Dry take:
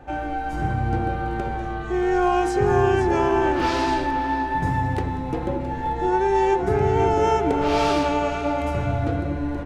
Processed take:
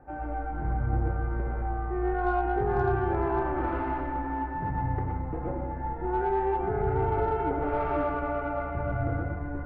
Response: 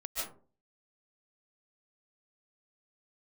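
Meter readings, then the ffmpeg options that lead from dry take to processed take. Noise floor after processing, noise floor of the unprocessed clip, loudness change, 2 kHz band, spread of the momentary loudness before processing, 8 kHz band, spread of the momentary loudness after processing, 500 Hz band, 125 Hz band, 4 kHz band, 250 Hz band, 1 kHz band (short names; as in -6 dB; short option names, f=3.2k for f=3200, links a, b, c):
-34 dBFS, -28 dBFS, -7.0 dB, -8.5 dB, 8 LU, under -35 dB, 6 LU, -8.0 dB, -4.5 dB, under -20 dB, -8.5 dB, -7.5 dB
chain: -filter_complex "[0:a]lowpass=f=1.7k:w=0.5412,lowpass=f=1.7k:w=1.3066[a];[1:a]atrim=start_sample=2205,atrim=end_sample=6174,asetrate=48510,aresample=44100[b];[a][b]afir=irnorm=-1:irlink=0,aeval=exprs='0.266*(cos(1*acos(clip(val(0)/0.266,-1,1)))-cos(1*PI/2))+0.00376*(cos(8*acos(clip(val(0)/0.266,-1,1)))-cos(8*PI/2))':c=same,volume=-3dB"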